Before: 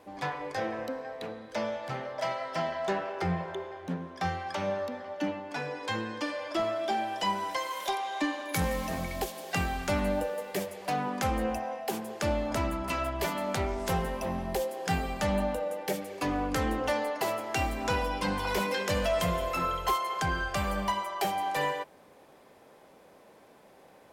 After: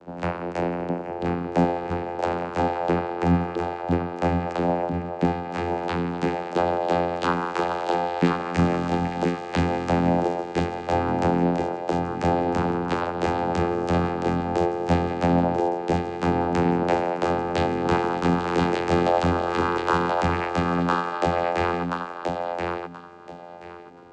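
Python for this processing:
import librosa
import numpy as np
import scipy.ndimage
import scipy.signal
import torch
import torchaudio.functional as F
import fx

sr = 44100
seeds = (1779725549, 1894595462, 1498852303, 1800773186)

p1 = fx.low_shelf(x, sr, hz=430.0, db=8.5, at=(1.08, 1.64))
p2 = fx.vocoder(p1, sr, bands=8, carrier='saw', carrier_hz=86.7)
p3 = p2 + fx.echo_feedback(p2, sr, ms=1029, feedback_pct=21, wet_db=-4.0, dry=0)
y = p3 * librosa.db_to_amplitude(8.5)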